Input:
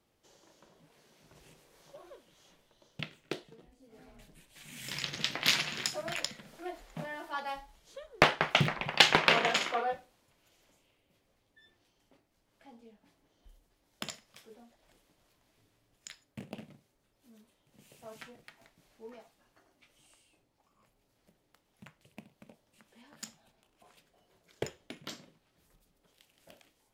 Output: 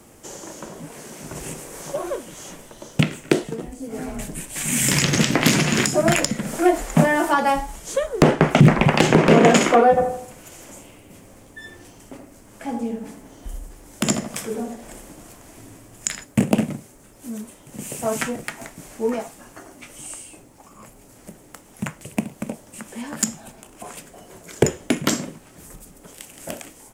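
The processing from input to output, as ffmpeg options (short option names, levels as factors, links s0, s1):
-filter_complex "[0:a]asplit=3[s0][s1][s2];[s0]afade=t=out:st=9.96:d=0.02[s3];[s1]asplit=2[s4][s5];[s5]adelay=79,lowpass=f=1100:p=1,volume=0.708,asplit=2[s6][s7];[s7]adelay=79,lowpass=f=1100:p=1,volume=0.43,asplit=2[s8][s9];[s9]adelay=79,lowpass=f=1100:p=1,volume=0.43,asplit=2[s10][s11];[s11]adelay=79,lowpass=f=1100:p=1,volume=0.43,asplit=2[s12][s13];[s13]adelay=79,lowpass=f=1100:p=1,volume=0.43,asplit=2[s14][s15];[s15]adelay=79,lowpass=f=1100:p=1,volume=0.43[s16];[s4][s6][s8][s10][s12][s14][s16]amix=inputs=7:normalize=0,afade=t=in:st=9.96:d=0.02,afade=t=out:st=16.24:d=0.02[s17];[s2]afade=t=in:st=16.24:d=0.02[s18];[s3][s17][s18]amix=inputs=3:normalize=0,equalizer=f=250:t=o:w=1:g=4,equalizer=f=4000:t=o:w=1:g=-10,equalizer=f=8000:t=o:w=1:g=10,acrossover=split=480[s19][s20];[s20]acompressor=threshold=0.00794:ratio=5[s21];[s19][s21]amix=inputs=2:normalize=0,alimiter=level_in=18.8:limit=0.891:release=50:level=0:latency=1,volume=0.891"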